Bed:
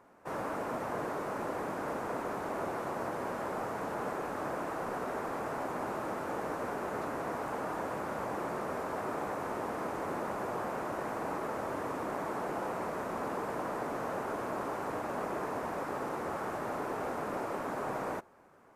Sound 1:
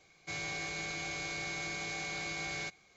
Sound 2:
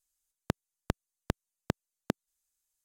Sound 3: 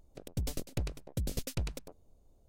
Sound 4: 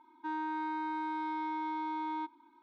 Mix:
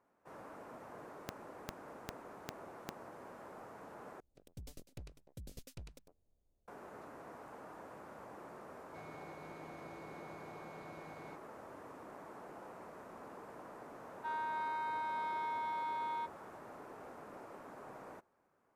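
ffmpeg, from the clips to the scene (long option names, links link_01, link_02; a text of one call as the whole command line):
ffmpeg -i bed.wav -i cue0.wav -i cue1.wav -i cue2.wav -i cue3.wav -filter_complex "[0:a]volume=-15.5dB[link_01];[2:a]acompressor=threshold=-41dB:ratio=6:attack=3.2:release=140:knee=1:detection=peak[link_02];[1:a]bandpass=frequency=280:width_type=q:width=0.59:csg=0[link_03];[4:a]highpass=frequency=770:width=0.5412,highpass=frequency=770:width=1.3066[link_04];[link_01]asplit=2[link_05][link_06];[link_05]atrim=end=4.204[link_07];[3:a]atrim=end=2.48,asetpts=PTS-STARTPTS,volume=-15.5dB[link_08];[link_06]atrim=start=6.676[link_09];[link_02]atrim=end=2.84,asetpts=PTS-STARTPTS,volume=-4.5dB,afade=type=in:duration=0.004:curve=hsin,afade=type=out:start_time=2.836:duration=0.004:curve=hsin,adelay=790[link_10];[link_03]atrim=end=2.96,asetpts=PTS-STARTPTS,volume=-7.5dB,afade=type=in:duration=0.004:curve=hsin,afade=type=out:start_time=2.956:duration=0.004:curve=hsin,adelay=381906S[link_11];[link_04]atrim=end=2.62,asetpts=PTS-STARTPTS,volume=-0.5dB,afade=type=in:duration=0.004:curve=hsin,afade=type=out:start_time=2.616:duration=0.004:curve=hsin,adelay=14000[link_12];[link_07][link_08]acrossfade=duration=0.004:curve1=hsin:curve2=hsin[link_13];[link_13][link_09]acrossfade=duration=0.004:curve1=hsin:curve2=hsin[link_14];[link_14][link_10][link_11][link_12]amix=inputs=4:normalize=0" out.wav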